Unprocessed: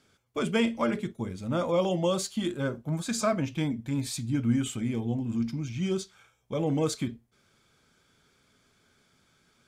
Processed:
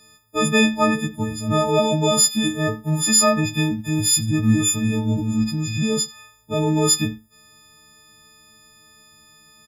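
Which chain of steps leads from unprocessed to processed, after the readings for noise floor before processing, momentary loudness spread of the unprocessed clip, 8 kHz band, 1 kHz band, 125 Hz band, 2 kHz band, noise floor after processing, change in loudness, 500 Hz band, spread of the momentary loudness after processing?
−68 dBFS, 7 LU, +19.5 dB, +10.5 dB, +9.0 dB, +12.5 dB, −53 dBFS, +10.0 dB, +7.0 dB, 8 LU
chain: every partial snapped to a pitch grid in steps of 6 semitones
low-shelf EQ 180 Hz +6.5 dB
slap from a distant wall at 15 metres, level −19 dB
level +5.5 dB

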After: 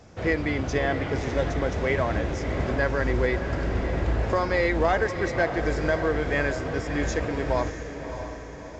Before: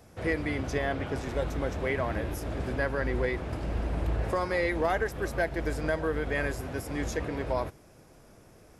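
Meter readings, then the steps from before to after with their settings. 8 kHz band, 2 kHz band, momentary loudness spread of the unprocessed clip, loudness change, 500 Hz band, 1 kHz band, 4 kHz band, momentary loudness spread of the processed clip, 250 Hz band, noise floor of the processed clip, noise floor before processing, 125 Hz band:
+3.0 dB, +5.0 dB, 5 LU, +5.0 dB, +5.0 dB, +5.5 dB, +5.5 dB, 6 LU, +5.0 dB, −39 dBFS, −55 dBFS, +5.0 dB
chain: feedback delay with all-pass diffusion 627 ms, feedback 53%, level −9 dB
level +4.5 dB
mu-law 128 kbit/s 16,000 Hz

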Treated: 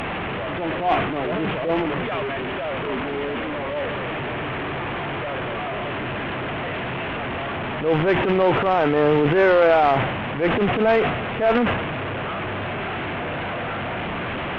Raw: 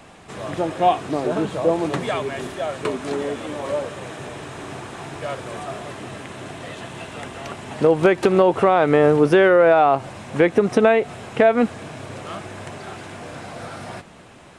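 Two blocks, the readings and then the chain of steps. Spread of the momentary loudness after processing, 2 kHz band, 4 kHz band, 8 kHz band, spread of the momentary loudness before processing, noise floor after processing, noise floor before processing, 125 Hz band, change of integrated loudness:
10 LU, +2.5 dB, +3.5 dB, can't be measured, 19 LU, −28 dBFS, −45 dBFS, +2.0 dB, −3.5 dB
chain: linear delta modulator 16 kbit/s, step −19 dBFS
transient designer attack −10 dB, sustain +7 dB
harmonic generator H 2 −13 dB, 3 −23 dB, 4 −36 dB, 8 −40 dB, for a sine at −3.5 dBFS

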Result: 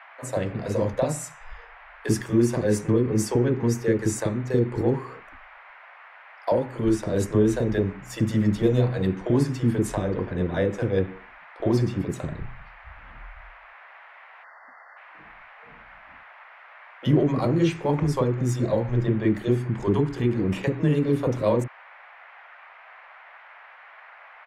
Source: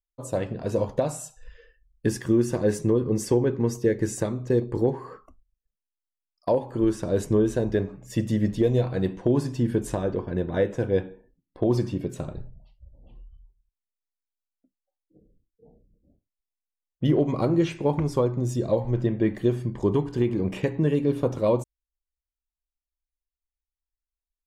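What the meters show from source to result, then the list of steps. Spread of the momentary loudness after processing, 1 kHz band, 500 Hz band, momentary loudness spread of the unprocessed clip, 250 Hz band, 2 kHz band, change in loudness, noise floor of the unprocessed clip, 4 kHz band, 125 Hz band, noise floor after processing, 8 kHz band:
9 LU, +2.5 dB, −0.5 dB, 7 LU, +1.5 dB, +4.5 dB, +1.0 dB, below −85 dBFS, +2.5 dB, +2.5 dB, −49 dBFS, +2.5 dB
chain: noise in a band 610–2,200 Hz −50 dBFS
multiband delay without the direct sound highs, lows 40 ms, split 480 Hz
time-frequency box erased 0:14.44–0:14.97, 2,100–4,300 Hz
level +2.5 dB

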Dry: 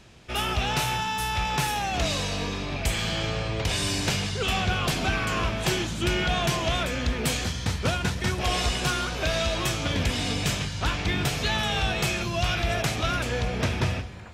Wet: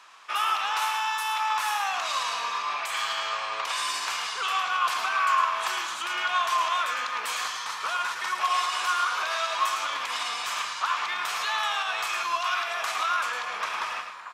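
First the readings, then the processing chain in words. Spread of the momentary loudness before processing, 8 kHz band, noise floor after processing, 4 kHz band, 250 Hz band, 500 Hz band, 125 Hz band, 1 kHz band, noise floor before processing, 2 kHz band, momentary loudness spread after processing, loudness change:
3 LU, −3.0 dB, −35 dBFS, −2.0 dB, below −25 dB, −10.5 dB, below −40 dB, +5.0 dB, −34 dBFS, +1.0 dB, 5 LU, −0.5 dB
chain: brickwall limiter −21.5 dBFS, peak gain reduction 8.5 dB
high-pass with resonance 1,100 Hz, resonance Q 5.6
single-tap delay 108 ms −7.5 dB

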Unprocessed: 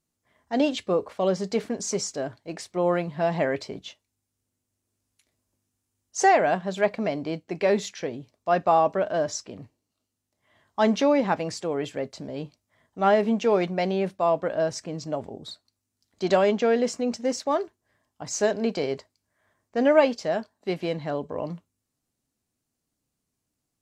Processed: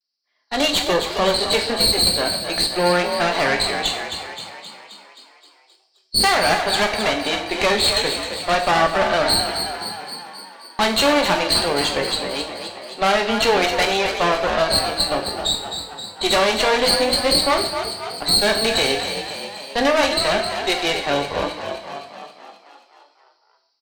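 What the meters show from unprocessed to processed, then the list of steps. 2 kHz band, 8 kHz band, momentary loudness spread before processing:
+12.0 dB, +10.5 dB, 15 LU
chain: hearing-aid frequency compression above 3,800 Hz 4 to 1
Butterworth high-pass 220 Hz 48 dB per octave
noise gate −50 dBFS, range −9 dB
spectral tilt +4.5 dB per octave
downward compressor 2 to 1, threshold −25 dBFS, peak gain reduction 6.5 dB
harmonic generator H 4 −11 dB, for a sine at −12 dBFS
pitch vibrato 0.37 Hz 28 cents
tube saturation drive 25 dB, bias 0.55
automatic gain control gain up to 11.5 dB
on a send: echo with shifted repeats 263 ms, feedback 61%, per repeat +46 Hz, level −8 dB
on the sum: coupled-rooms reverb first 0.57 s, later 1.6 s, from −25 dB, DRR 3.5 dB

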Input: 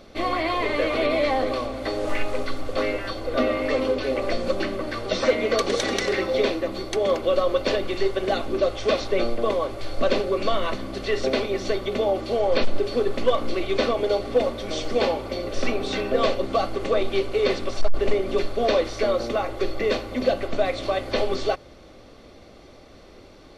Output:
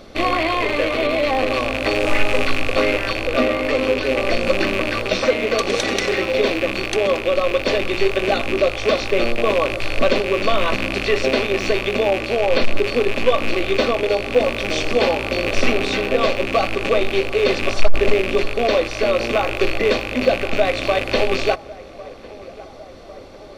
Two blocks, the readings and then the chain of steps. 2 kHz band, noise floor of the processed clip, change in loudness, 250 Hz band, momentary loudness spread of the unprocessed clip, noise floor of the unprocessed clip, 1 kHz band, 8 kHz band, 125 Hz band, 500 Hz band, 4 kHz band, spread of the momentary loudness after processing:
+9.5 dB, −38 dBFS, +5.5 dB, +4.5 dB, 6 LU, −47 dBFS, +4.5 dB, +5.5 dB, +5.5 dB, +4.0 dB, +6.5 dB, 3 LU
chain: loose part that buzzes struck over −38 dBFS, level −17 dBFS
speech leveller 0.5 s
on a send: feedback echo with a band-pass in the loop 1,101 ms, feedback 70%, band-pass 730 Hz, level −18.5 dB
on the sum: level +4.5 dB

